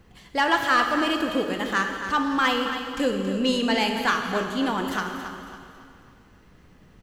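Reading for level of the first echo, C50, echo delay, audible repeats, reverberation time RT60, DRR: −10.5 dB, 4.0 dB, 276 ms, 3, 2.3 s, 2.5 dB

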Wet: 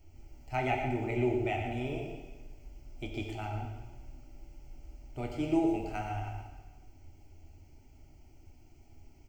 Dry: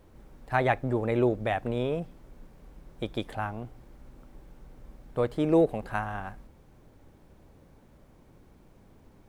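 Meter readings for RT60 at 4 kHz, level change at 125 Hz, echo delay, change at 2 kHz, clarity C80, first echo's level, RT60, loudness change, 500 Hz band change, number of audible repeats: 1.2 s, −3.5 dB, 116 ms, −5.5 dB, 4.0 dB, −9.0 dB, 1.3 s, −5.0 dB, −7.5 dB, 1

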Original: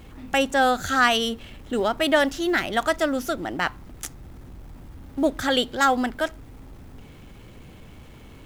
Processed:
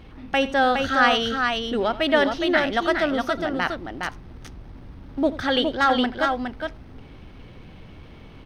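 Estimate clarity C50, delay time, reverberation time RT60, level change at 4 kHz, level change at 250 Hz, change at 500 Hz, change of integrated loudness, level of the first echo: no reverb audible, 85 ms, no reverb audible, +1.0 dB, +1.5 dB, +1.5 dB, +0.5 dB, −16.5 dB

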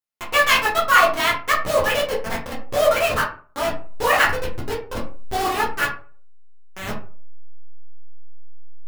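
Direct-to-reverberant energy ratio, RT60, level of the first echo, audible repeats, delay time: −4.5 dB, 0.40 s, no echo audible, no echo audible, no echo audible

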